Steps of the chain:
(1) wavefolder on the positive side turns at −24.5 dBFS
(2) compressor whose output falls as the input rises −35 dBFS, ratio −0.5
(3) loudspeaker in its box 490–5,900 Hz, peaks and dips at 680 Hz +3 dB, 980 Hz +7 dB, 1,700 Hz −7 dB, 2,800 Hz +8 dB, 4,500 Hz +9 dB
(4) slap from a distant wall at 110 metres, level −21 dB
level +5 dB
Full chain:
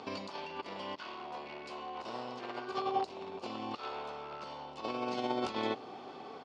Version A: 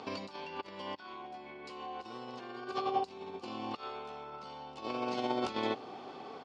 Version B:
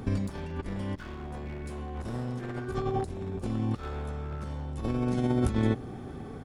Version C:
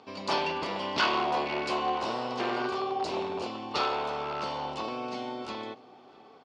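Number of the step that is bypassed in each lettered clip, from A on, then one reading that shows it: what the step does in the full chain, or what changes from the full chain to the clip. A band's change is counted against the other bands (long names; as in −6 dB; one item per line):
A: 1, distortion level −9 dB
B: 3, 125 Hz band +23.0 dB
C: 2, 2 kHz band +4.0 dB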